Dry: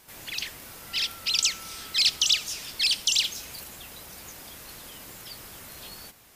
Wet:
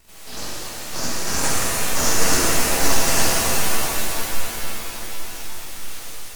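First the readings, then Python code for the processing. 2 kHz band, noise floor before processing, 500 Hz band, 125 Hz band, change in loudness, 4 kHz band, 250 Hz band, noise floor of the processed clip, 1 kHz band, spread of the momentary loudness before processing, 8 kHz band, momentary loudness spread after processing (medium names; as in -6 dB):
+8.5 dB, -51 dBFS, +22.5 dB, +19.5 dB, +3.5 dB, -1.5 dB, +21.0 dB, -35 dBFS, +20.5 dB, 20 LU, +9.5 dB, 16 LU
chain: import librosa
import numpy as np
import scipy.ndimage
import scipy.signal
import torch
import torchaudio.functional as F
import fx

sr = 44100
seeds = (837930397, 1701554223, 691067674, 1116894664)

y = fx.partial_stretch(x, sr, pct=89)
y = np.abs(y)
y = fx.rev_shimmer(y, sr, seeds[0], rt60_s=3.8, semitones=7, shimmer_db=-2, drr_db=-7.0)
y = y * 10.0 ** (3.0 / 20.0)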